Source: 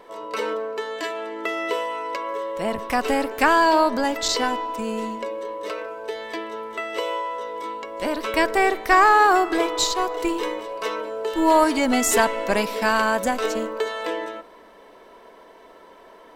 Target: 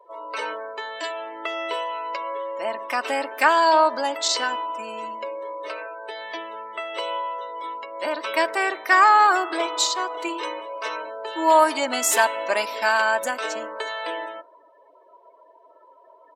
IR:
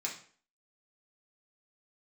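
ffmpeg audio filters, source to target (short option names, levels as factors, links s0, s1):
-af "afftdn=nr=26:nf=-42,highpass=590,aecho=1:1:3.3:0.46"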